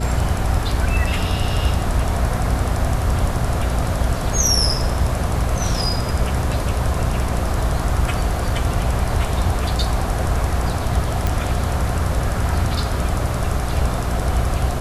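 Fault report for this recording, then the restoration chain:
mains hum 60 Hz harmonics 7 −24 dBFS
0:11.27: click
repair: click removal
hum removal 60 Hz, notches 7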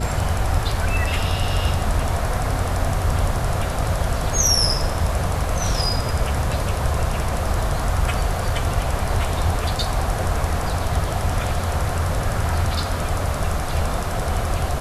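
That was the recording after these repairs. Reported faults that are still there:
none of them is left

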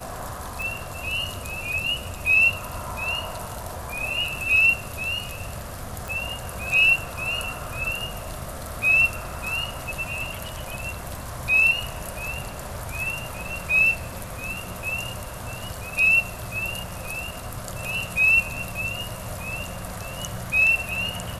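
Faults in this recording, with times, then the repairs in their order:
0:00.62: click
0:06.08: click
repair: click removal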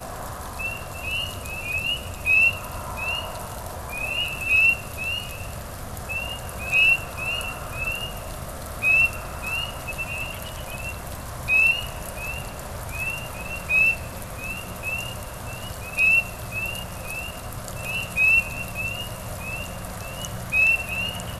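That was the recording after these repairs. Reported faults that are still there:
none of them is left

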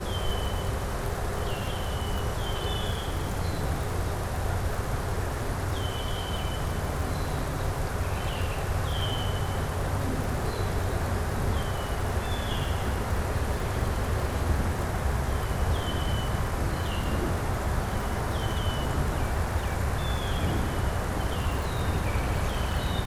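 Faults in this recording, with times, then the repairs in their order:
surface crackle 28 per second −31 dBFS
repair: click removal

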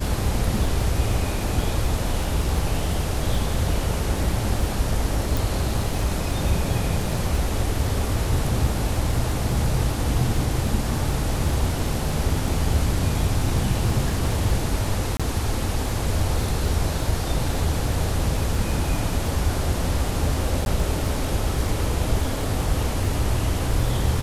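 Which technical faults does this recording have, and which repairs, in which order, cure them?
surface crackle 34 per second −29 dBFS
0:05.37: click
0:15.17–0:15.20: drop-out 26 ms
0:20.65–0:20.66: drop-out 11 ms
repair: click removal
repair the gap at 0:15.17, 26 ms
repair the gap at 0:20.65, 11 ms

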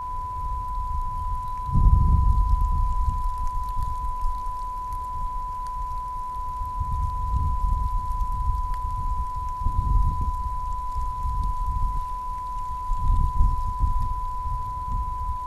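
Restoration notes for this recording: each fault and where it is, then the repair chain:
whistle 1,000 Hz −29 dBFS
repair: notch filter 1,000 Hz, Q 30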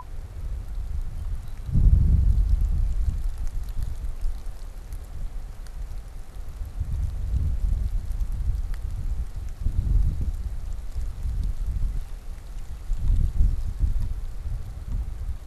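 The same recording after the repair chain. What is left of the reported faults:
none of them is left

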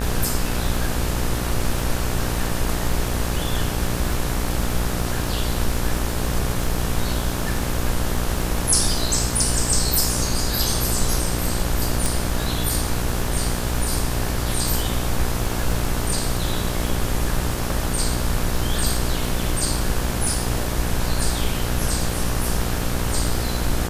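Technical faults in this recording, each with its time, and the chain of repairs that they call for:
mains buzz 60 Hz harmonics 30 −26 dBFS
surface crackle 32 per second −28 dBFS
0:12.06: click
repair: click removal
hum removal 60 Hz, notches 30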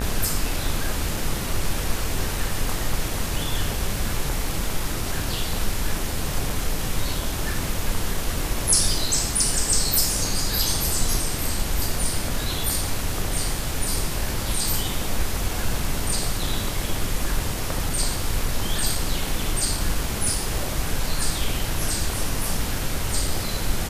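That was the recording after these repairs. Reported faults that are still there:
none of them is left

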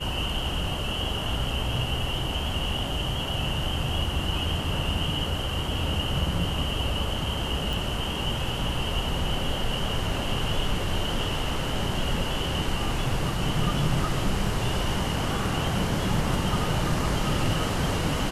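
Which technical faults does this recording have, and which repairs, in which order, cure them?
0:07.73: click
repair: click removal

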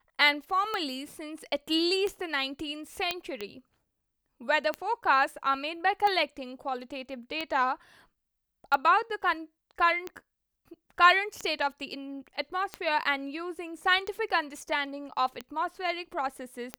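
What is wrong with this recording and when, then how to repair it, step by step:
scratch tick 45 rpm −18 dBFS
0:03.11: click −13 dBFS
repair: click removal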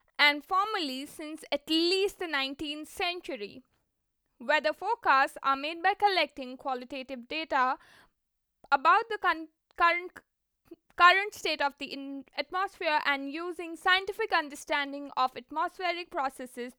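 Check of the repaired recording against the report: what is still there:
none of them is left

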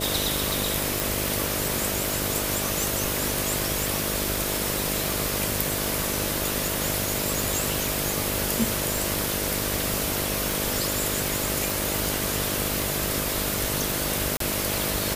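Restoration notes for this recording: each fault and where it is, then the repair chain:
mains buzz 50 Hz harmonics 13 −32 dBFS
scratch tick 78 rpm
0:01.00: click
0:11.70: click
0:14.37–0:14.40: drop-out 33 ms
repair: click removal
hum removal 50 Hz, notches 13
repair the gap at 0:14.37, 33 ms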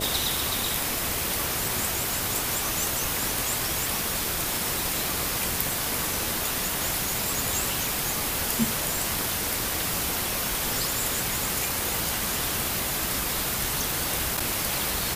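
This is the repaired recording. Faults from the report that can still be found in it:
none of them is left

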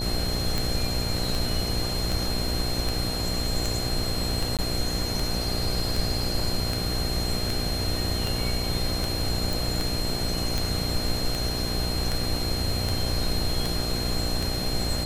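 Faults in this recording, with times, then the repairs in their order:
mains buzz 60 Hz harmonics 13 −31 dBFS
scratch tick 78 rpm
whistle 4,200 Hz −31 dBFS
0:04.57–0:04.59: drop-out 17 ms
0:09.53: click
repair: click removal
hum removal 60 Hz, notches 13
notch filter 4,200 Hz, Q 30
repair the gap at 0:04.57, 17 ms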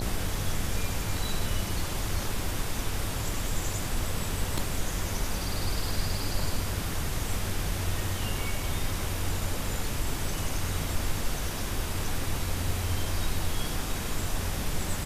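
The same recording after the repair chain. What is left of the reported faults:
none of them is left

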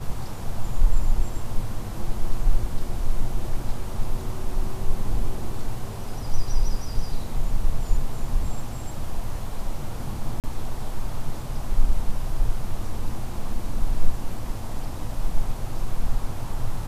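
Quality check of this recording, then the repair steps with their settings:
0:10.40–0:10.44: drop-out 38 ms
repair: repair the gap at 0:10.40, 38 ms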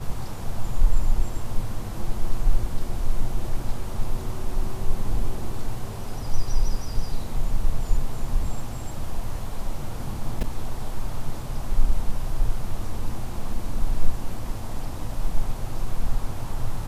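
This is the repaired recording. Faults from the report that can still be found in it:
none of them is left

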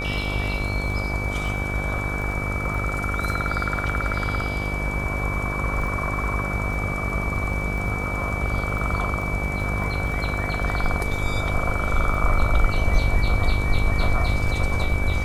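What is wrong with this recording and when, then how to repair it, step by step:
mains buzz 50 Hz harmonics 30 −28 dBFS
surface crackle 23 per second −31 dBFS
whistle 2,300 Hz −29 dBFS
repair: click removal
notch filter 2,300 Hz, Q 30
hum removal 50 Hz, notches 30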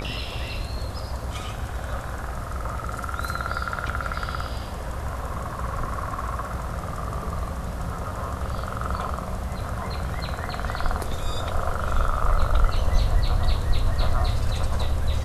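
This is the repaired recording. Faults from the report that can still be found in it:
none of them is left

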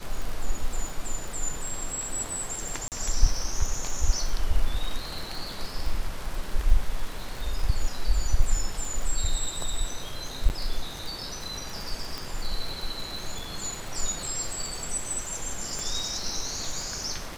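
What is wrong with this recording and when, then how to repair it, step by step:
surface crackle 60 per second −31 dBFS
0:02.88–0:02.92: drop-out 38 ms
0:10.49–0:10.50: drop-out 9.5 ms
0:12.18: click
0:15.79: click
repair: click removal
repair the gap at 0:02.88, 38 ms
repair the gap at 0:10.49, 9.5 ms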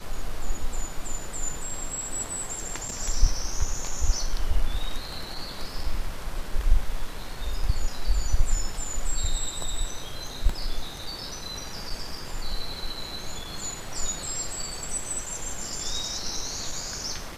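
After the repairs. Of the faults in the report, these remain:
0:12.18: click

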